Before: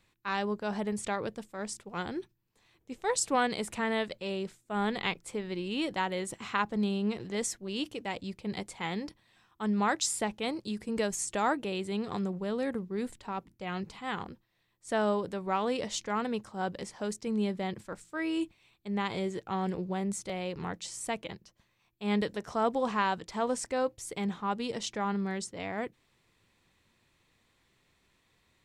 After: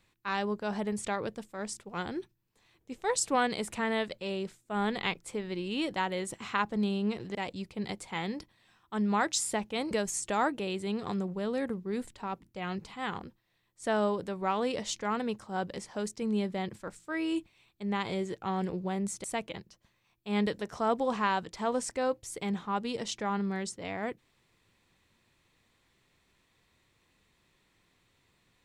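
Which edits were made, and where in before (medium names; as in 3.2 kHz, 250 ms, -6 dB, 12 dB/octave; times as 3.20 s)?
7.35–8.03 s: delete
10.59–10.96 s: delete
20.29–20.99 s: delete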